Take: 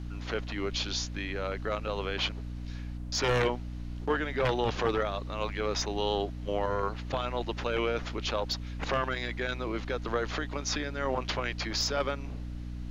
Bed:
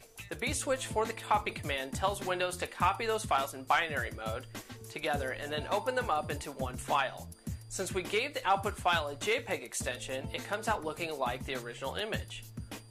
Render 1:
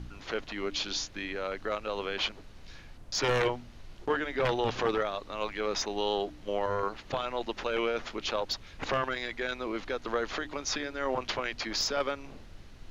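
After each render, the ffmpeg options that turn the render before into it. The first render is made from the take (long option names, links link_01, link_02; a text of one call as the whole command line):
ffmpeg -i in.wav -af "bandreject=frequency=60:width_type=h:width=4,bandreject=frequency=120:width_type=h:width=4,bandreject=frequency=180:width_type=h:width=4,bandreject=frequency=240:width_type=h:width=4,bandreject=frequency=300:width_type=h:width=4" out.wav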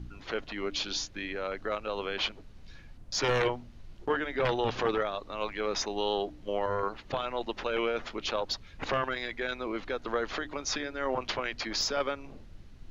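ffmpeg -i in.wav -af "afftdn=noise_reduction=7:noise_floor=-50" out.wav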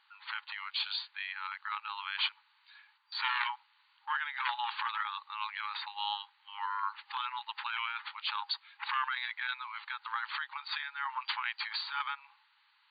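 ffmpeg -i in.wav -af "afftfilt=real='re*between(b*sr/4096,810,4700)':imag='im*between(b*sr/4096,810,4700)':win_size=4096:overlap=0.75" out.wav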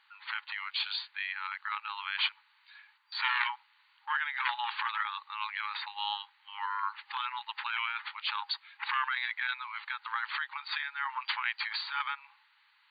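ffmpeg -i in.wav -af "equalizer=frequency=2000:width_type=o:width=0.87:gain=4.5" out.wav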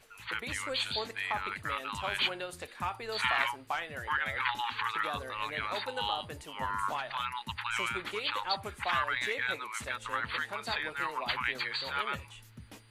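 ffmpeg -i in.wav -i bed.wav -filter_complex "[1:a]volume=-7dB[link_01];[0:a][link_01]amix=inputs=2:normalize=0" out.wav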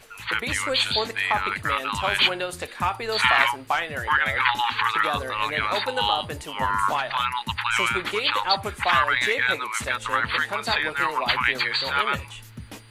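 ffmpeg -i in.wav -af "volume=10.5dB" out.wav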